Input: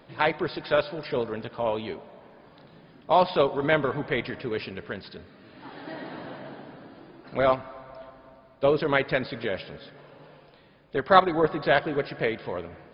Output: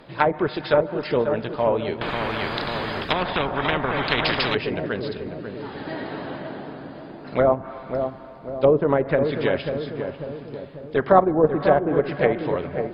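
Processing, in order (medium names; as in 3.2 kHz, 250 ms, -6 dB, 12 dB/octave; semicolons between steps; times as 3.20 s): low-pass that closes with the level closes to 720 Hz, closed at -19.5 dBFS; filtered feedback delay 543 ms, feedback 57%, low-pass 850 Hz, level -6 dB; 2.01–4.55 s: spectrum-flattening compressor 4:1; trim +6 dB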